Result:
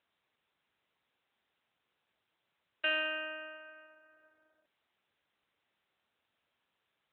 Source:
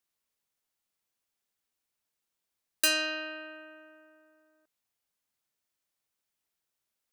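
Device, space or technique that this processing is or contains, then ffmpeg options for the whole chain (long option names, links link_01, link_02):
telephone: -af "highpass=390,lowpass=3600,asoftclip=type=tanh:threshold=-20dB" -ar 8000 -c:a libopencore_amrnb -b:a 12200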